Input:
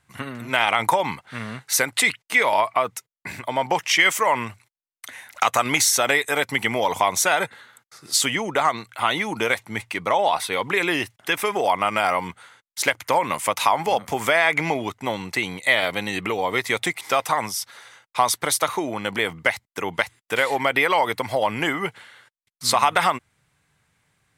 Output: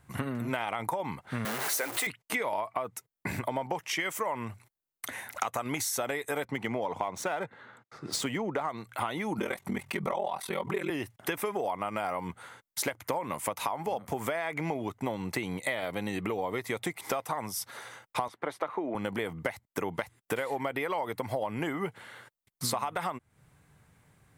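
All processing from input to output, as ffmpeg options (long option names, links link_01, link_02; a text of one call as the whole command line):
ffmpeg -i in.wav -filter_complex "[0:a]asettb=1/sr,asplit=3[link_01][link_02][link_03];[link_01]atrim=end=1.454[link_04];[link_02]atrim=start=1.45:end=2.07,asetpts=PTS-STARTPTS,afade=type=in:duration=0.004:curve=qsin,afade=type=out:start_time=0.616:duration=0.004:curve=qsin,aeval=exprs='val(0)+0.5*0.119*sgn(val(0))':channel_layout=same,highpass=460[link_05];[link_03]atrim=start=2.066[link_06];[link_04][link_05]acrossfade=duration=0.004:curve1=hsin:curve2=qsin[link_07];[link_07][link_06]acrossfade=duration=0.004:curve1=qsin:curve2=hsin,asettb=1/sr,asplit=3[link_08][link_09][link_10];[link_08]atrim=end=6.454[link_11];[link_09]atrim=start=6.45:end=8.69,asetpts=PTS-STARTPTS,afade=type=in:duration=0.004:curve=qsin,afade=type=out:start_time=2.236:duration=0.004:curve=qsin,highpass=97,highshelf=frequency=5400:gain=-7.5,adynamicsmooth=sensitivity=4.5:basefreq=4500[link_12];[link_10]atrim=start=8.686[link_13];[link_11][link_12]acrossfade=duration=0.004:curve1=hsin:curve2=qsin[link_14];[link_14][link_13]acrossfade=duration=0.004:curve1=qsin:curve2=hsin,asettb=1/sr,asplit=3[link_15][link_16][link_17];[link_15]atrim=end=9.384[link_18];[link_16]atrim=start=9.38:end=10.9,asetpts=PTS-STARTPTS,afade=type=in:duration=0.004:curve=qsin,afade=type=out:start_time=1.516:duration=0.004:curve=qsin,aecho=1:1:5.2:0.79,atrim=end_sample=67032,aeval=exprs='val(0)*sin(2*PI*21*n/s)':channel_layout=same,acompressor=mode=upward:threshold=-25dB:ratio=2.5:attack=3.2:release=140:knee=2.83:detection=peak[link_19];[link_17]atrim=start=10.896[link_20];[link_18][link_19]acrossfade=duration=0.004:curve1=hsin:curve2=qsin[link_21];[link_21][link_20]acrossfade=duration=0.004:curve1=qsin:curve2=hsin,asettb=1/sr,asplit=3[link_22][link_23][link_24];[link_22]atrim=end=18.284[link_25];[link_23]atrim=start=18.28:end=18.95,asetpts=PTS-STARTPTS,afade=type=in:duration=0.004:curve=qsin,afade=type=out:start_time=0.666:duration=0.004:curve=qsin,lowpass=12000,acrossover=split=190 3000:gain=0.141 1 0.0708[link_26][link_27][link_28];[link_26][link_27][link_28]amix=inputs=3:normalize=0[link_29];[link_24]atrim=start=18.946[link_30];[link_25][link_29]acrossfade=duration=0.004:curve1=hsin:curve2=qsin[link_31];[link_31][link_30]acrossfade=duration=0.004:curve1=qsin:curve2=hsin,equalizer=frequency=3900:width=0.31:gain=-11,acompressor=threshold=-38dB:ratio=6,volume=8dB" out.wav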